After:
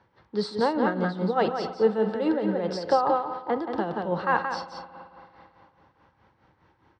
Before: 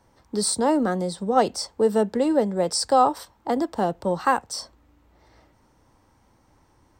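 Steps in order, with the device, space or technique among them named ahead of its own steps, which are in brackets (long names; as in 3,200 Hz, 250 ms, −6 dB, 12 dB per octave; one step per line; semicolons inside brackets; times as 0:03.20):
0:02.93–0:03.60: high-frequency loss of the air 270 metres
single-tap delay 177 ms −5 dB
combo amplifier with spring reverb and tremolo (spring reverb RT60 2.8 s, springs 55 ms, chirp 35 ms, DRR 11.5 dB; amplitude tremolo 4.8 Hz, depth 65%; loudspeaker in its box 91–3,900 Hz, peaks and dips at 260 Hz −8 dB, 660 Hz −5 dB, 1,600 Hz +4 dB)
level +1.5 dB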